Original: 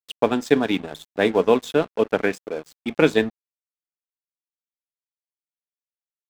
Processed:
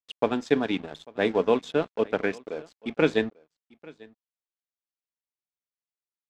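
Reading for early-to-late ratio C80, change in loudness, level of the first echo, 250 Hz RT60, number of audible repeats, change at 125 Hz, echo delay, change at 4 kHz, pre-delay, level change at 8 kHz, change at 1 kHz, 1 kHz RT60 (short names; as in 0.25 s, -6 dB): none, -5.5 dB, -23.5 dB, none, 1, -5.0 dB, 0.844 s, -5.5 dB, none, n/a, -5.0 dB, none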